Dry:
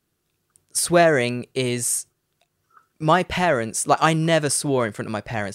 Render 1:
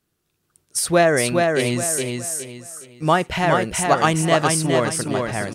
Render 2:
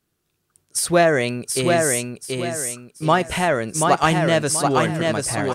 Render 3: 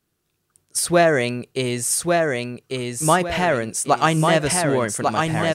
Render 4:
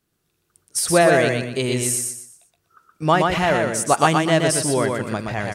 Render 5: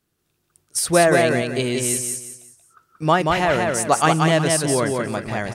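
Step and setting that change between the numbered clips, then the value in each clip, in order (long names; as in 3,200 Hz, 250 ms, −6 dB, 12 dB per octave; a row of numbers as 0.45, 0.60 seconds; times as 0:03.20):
repeating echo, delay time: 415, 732, 1,146, 122, 181 milliseconds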